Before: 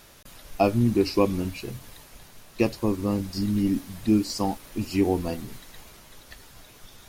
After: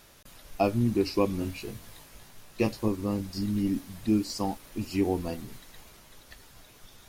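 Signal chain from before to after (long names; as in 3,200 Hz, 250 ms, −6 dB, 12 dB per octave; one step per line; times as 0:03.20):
0:01.39–0:02.88: double-tracking delay 19 ms −4 dB
level −4 dB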